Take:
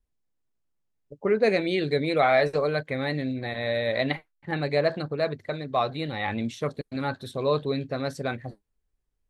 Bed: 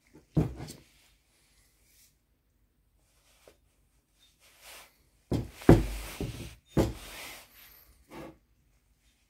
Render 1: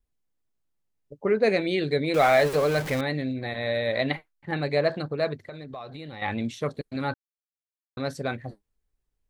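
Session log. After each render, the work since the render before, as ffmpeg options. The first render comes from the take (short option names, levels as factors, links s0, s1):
-filter_complex "[0:a]asettb=1/sr,asplit=3[s0][s1][s2];[s0]atrim=end=2.144[s3];[s1]atrim=start=2.14:end=3.01,asetpts=PTS-STARTPTS,afade=t=in:d=0.004:c=qsin,afade=t=out:st=0.866:d=0.004:c=qsin,aeval=exprs='val(0)+0.5*0.0398*sgn(val(0))':c=same[s4];[s2]atrim=start=3.006[s5];[s3][s4]acrossfade=d=0.004:c1=hsin:c2=qsin[s6];[s6][s5]acrossfade=d=0.004:c1=qsin:c2=hsin,asettb=1/sr,asplit=3[s7][s8][s9];[s7]atrim=end=5.414[s10];[s8]atrim=start=5.41:end=6.22,asetpts=PTS-STARTPTS,afade=t=in:d=0.004:c=qsin,afade=t=out:st=0.806:d=0.004:c=qsin,acompressor=threshold=0.0158:ratio=5:attack=3.2:release=140:knee=1:detection=peak[s11];[s9]atrim=start=6.216[s12];[s10][s11]acrossfade=d=0.004:c1=hsin:c2=qsin[s13];[s13][s12]acrossfade=d=0.004:c1=qsin:c2=hsin,asplit=3[s14][s15][s16];[s14]atrim=end=7.14,asetpts=PTS-STARTPTS,afade=t=out:st=7.136:d=0.004:c=hsin[s17];[s15]atrim=start=7.14:end=7.97,asetpts=PTS-STARTPTS,volume=0[s18];[s16]atrim=start=7.97,asetpts=PTS-STARTPTS,afade=t=in:d=0.004:c=hsin[s19];[s17][s18][s19]concat=n=3:v=0:a=1"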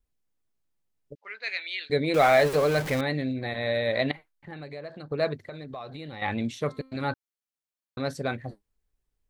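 -filter_complex "[0:a]asettb=1/sr,asplit=3[s0][s1][s2];[s0]atrim=end=1.154[s3];[s1]atrim=start=1.15:end=1.9,asetpts=PTS-STARTPTS,afade=t=in:d=0.004:c=qsin,afade=t=out:st=0.746:d=0.004:c=qsin,asuperpass=centerf=3100:order=4:qfactor=0.84[s4];[s2]atrim=start=1.896[s5];[s3][s4]acrossfade=d=0.004:c1=hsin:c2=qsin[s6];[s6][s5]acrossfade=d=0.004:c1=qsin:c2=hsin,asettb=1/sr,asplit=3[s7][s8][s9];[s7]atrim=end=4.114[s10];[s8]atrim=start=4.11:end=5.12,asetpts=PTS-STARTPTS,afade=t=in:d=0.004:c=qsin,afade=t=out:st=1.006:d=0.004:c=qsin,acompressor=threshold=0.00891:ratio=3:attack=3.2:release=140:knee=1:detection=peak[s11];[s9]atrim=start=5.116[s12];[s10][s11]acrossfade=d=0.004:c1=hsin:c2=qsin[s13];[s13][s12]acrossfade=d=0.004:c1=qsin:c2=hsin,asplit=3[s14][s15][s16];[s14]afade=t=out:st=6.54:d=0.02[s17];[s15]bandreject=f=263.2:t=h:w=4,bandreject=f=526.4:t=h:w=4,bandreject=f=789.6:t=h:w=4,bandreject=f=1052.8:t=h:w=4,bandreject=f=1316:t=h:w=4,bandreject=f=1579.2:t=h:w=4,bandreject=f=1842.4:t=h:w=4,bandreject=f=2105.6:t=h:w=4,bandreject=f=2368.8:t=h:w=4,bandreject=f=2632:t=h:w=4,bandreject=f=2895.2:t=h:w=4,bandreject=f=3158.4:t=h:w=4,bandreject=f=3421.6:t=h:w=4,bandreject=f=3684.8:t=h:w=4,bandreject=f=3948:t=h:w=4,bandreject=f=4211.2:t=h:w=4,bandreject=f=4474.4:t=h:w=4,bandreject=f=4737.6:t=h:w=4,afade=t=in:st=6.54:d=0.02,afade=t=out:st=7.02:d=0.02[s18];[s16]afade=t=in:st=7.02:d=0.02[s19];[s17][s18][s19]amix=inputs=3:normalize=0"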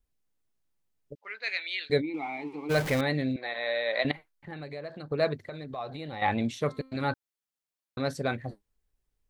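-filter_complex "[0:a]asplit=3[s0][s1][s2];[s0]afade=t=out:st=2:d=0.02[s3];[s1]asplit=3[s4][s5][s6];[s4]bandpass=f=300:t=q:w=8,volume=1[s7];[s5]bandpass=f=870:t=q:w=8,volume=0.501[s8];[s6]bandpass=f=2240:t=q:w=8,volume=0.355[s9];[s7][s8][s9]amix=inputs=3:normalize=0,afade=t=in:st=2:d=0.02,afade=t=out:st=2.69:d=0.02[s10];[s2]afade=t=in:st=2.69:d=0.02[s11];[s3][s10][s11]amix=inputs=3:normalize=0,asettb=1/sr,asplit=3[s12][s13][s14];[s12]atrim=end=3.364[s15];[s13]atrim=start=3.36:end=4.05,asetpts=PTS-STARTPTS,afade=t=in:d=0.004:c=qsin,afade=t=out:st=0.686:d=0.004:c=qsin,highpass=600,lowpass=5300[s16];[s14]atrim=start=4.046[s17];[s15][s16]acrossfade=d=0.004:c1=hsin:c2=qsin[s18];[s18][s17]acrossfade=d=0.004:c1=qsin:c2=hsin,asettb=1/sr,asplit=3[s19][s20][s21];[s19]atrim=end=5.784[s22];[s20]atrim=start=5.78:end=6.51,asetpts=PTS-STARTPTS,afade=t=in:d=0.004:c=qsin,afade=t=out:st=0.726:d=0.004:c=qsin,equalizer=f=760:w=1.5:g=5.5[s23];[s21]atrim=start=6.506[s24];[s22][s23]acrossfade=d=0.004:c1=hsin:c2=qsin[s25];[s25][s24]acrossfade=d=0.004:c1=qsin:c2=hsin"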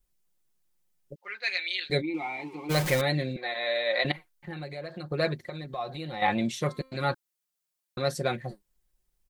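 -af "highshelf=f=5200:g=7.5,aecho=1:1:5.6:0.65"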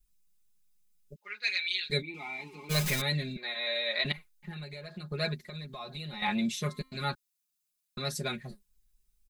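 -af "equalizer=f=620:w=0.4:g=-11,aecho=1:1:4.8:0.85"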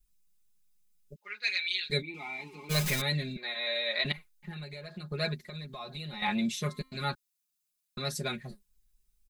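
-af anull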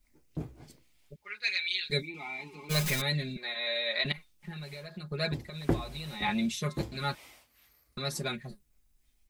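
-filter_complex "[1:a]volume=0.316[s0];[0:a][s0]amix=inputs=2:normalize=0"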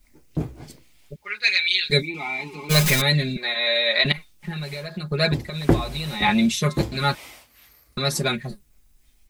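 -af "volume=3.55,alimiter=limit=0.794:level=0:latency=1"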